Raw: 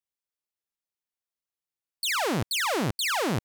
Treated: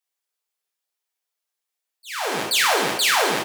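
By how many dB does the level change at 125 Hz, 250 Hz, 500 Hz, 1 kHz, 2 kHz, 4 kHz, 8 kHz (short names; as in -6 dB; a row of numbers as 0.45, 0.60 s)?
-9.5, -2.0, +5.5, +7.0, +7.5, +7.5, +7.5 dB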